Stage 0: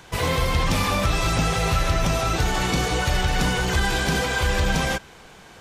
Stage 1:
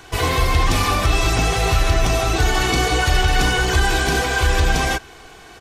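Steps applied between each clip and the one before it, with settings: comb 2.7 ms, depth 55%; trim +3 dB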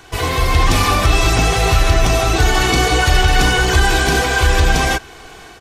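level rider gain up to 7 dB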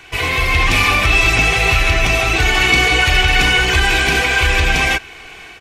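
peaking EQ 2.4 kHz +14 dB 0.79 oct; trim -3.5 dB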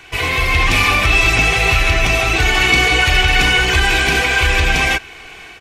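no audible change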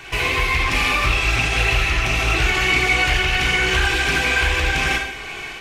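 compression 2.5:1, threshold -25 dBFS, peak gain reduction 11 dB; gated-style reverb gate 260 ms falling, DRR 0 dB; loudspeaker Doppler distortion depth 0.24 ms; trim +2 dB

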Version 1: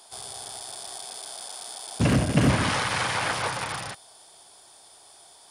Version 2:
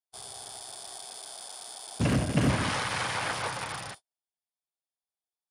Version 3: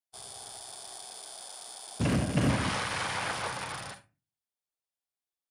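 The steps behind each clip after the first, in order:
gate -40 dBFS, range -44 dB; trim -4.5 dB
reverberation, pre-delay 41 ms, DRR 10 dB; trim -2 dB

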